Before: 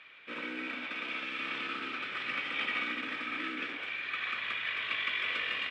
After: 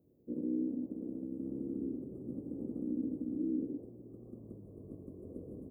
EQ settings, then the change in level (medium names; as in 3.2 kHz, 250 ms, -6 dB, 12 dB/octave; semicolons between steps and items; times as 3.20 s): inverse Chebyshev band-stop 1.5–4.3 kHz, stop band 80 dB; bass shelf 74 Hz +9.5 dB; +9.5 dB